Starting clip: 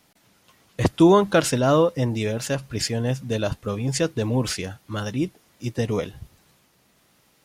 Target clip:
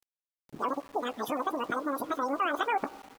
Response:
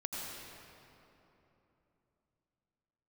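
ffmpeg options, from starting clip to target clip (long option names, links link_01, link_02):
-filter_complex "[0:a]areverse,highshelf=frequency=4500:gain=-9.5,acompressor=threshold=-29dB:ratio=6,tiltshelf=frequency=1200:gain=4,bandreject=frequency=1800:width=6.4,asplit=2[link_01][link_02];[link_02]adelay=33,volume=-11.5dB[link_03];[link_01][link_03]amix=inputs=2:normalize=0,asetrate=103194,aresample=44100,asplit=2[link_04][link_05];[1:a]atrim=start_sample=2205,lowpass=2400,adelay=20[link_06];[link_05][link_06]afir=irnorm=-1:irlink=0,volume=-16.5dB[link_07];[link_04][link_07]amix=inputs=2:normalize=0,afftdn=noise_reduction=15:noise_floor=-42,highpass=frequency=460:poles=1,acompressor=mode=upward:threshold=-46dB:ratio=2.5,aeval=exprs='val(0)*gte(abs(val(0)),0.00398)':channel_layout=same"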